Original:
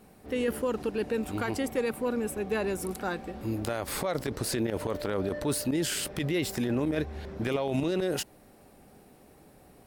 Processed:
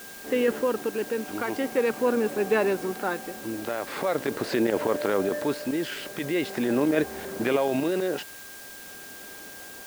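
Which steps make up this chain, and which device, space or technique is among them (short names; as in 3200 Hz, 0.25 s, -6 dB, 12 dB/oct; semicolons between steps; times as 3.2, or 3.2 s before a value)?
shortwave radio (BPF 250–2900 Hz; tremolo 0.42 Hz, depth 51%; whine 1600 Hz -54 dBFS; white noise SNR 17 dB); gain +8 dB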